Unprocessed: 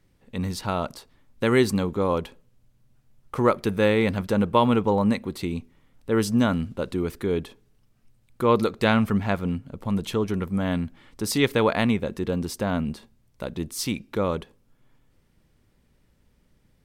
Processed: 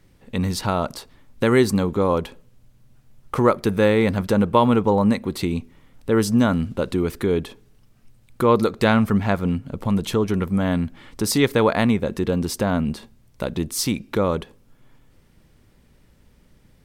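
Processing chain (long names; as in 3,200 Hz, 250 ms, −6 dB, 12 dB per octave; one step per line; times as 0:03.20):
dynamic equaliser 2,800 Hz, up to −4 dB, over −40 dBFS, Q 1.6
in parallel at +1 dB: downward compressor, threshold −31 dBFS, peak gain reduction 16 dB
on the sum: level +1.5 dB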